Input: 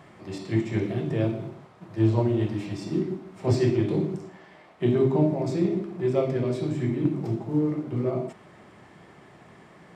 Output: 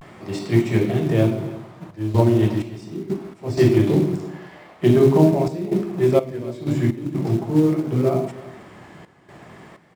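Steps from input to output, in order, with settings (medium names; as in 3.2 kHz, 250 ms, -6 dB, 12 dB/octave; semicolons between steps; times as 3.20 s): in parallel at -6 dB: short-mantissa float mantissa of 2-bit; on the sum: vibrato 0.41 Hz 59 cents; trance gate "xxxxxxxx.xx..x." 63 bpm -12 dB; delay 315 ms -19 dB; trim +4 dB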